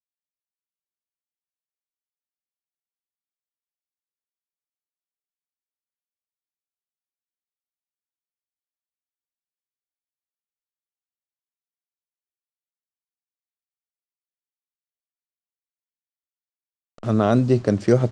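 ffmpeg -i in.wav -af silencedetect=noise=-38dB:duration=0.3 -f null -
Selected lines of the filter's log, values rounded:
silence_start: 0.00
silence_end: 16.98 | silence_duration: 16.98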